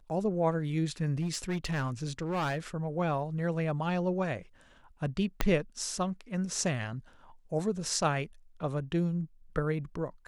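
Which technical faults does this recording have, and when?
0:01.21–0:02.58: clipping −27.5 dBFS
0:05.41: click −11 dBFS

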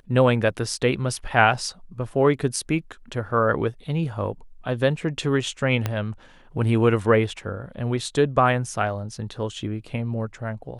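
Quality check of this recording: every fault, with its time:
0:05.86: click −10 dBFS

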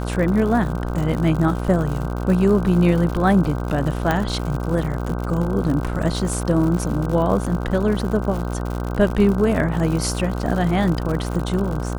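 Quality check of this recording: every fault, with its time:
mains buzz 60 Hz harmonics 26 −25 dBFS
surface crackle 110 per second −26 dBFS
0:04.11: click −7 dBFS

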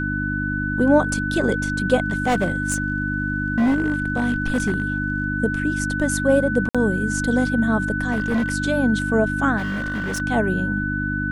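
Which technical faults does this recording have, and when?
mains hum 50 Hz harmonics 6 −26 dBFS
whistle 1,500 Hz −25 dBFS
0:02.04–0:05.24: clipping −15 dBFS
0:06.69–0:06.75: drop-out 56 ms
0:08.11–0:08.54: clipping −17 dBFS
0:09.57–0:10.22: clipping −22 dBFS

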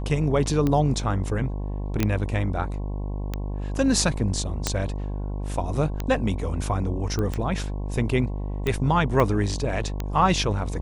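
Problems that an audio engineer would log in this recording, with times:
mains buzz 50 Hz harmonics 22 −29 dBFS
scratch tick 45 rpm −13 dBFS
0:02.03: click −8 dBFS
0:04.67: click
0:07.19: click −16 dBFS
0:09.20: drop-out 2 ms

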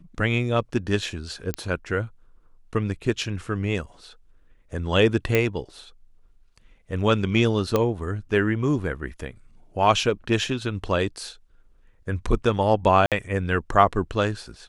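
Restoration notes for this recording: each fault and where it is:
0:01.54: click −11 dBFS
0:05.35: click −7 dBFS
0:07.76: click −8 dBFS
0:13.06–0:13.12: drop-out 57 ms

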